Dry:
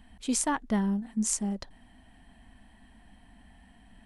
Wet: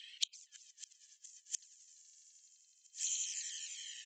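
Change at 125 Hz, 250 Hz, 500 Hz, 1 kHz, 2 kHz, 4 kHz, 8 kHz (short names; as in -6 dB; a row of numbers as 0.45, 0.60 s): under -40 dB, under -40 dB, under -40 dB, under -40 dB, -13.0 dB, +2.0 dB, -5.5 dB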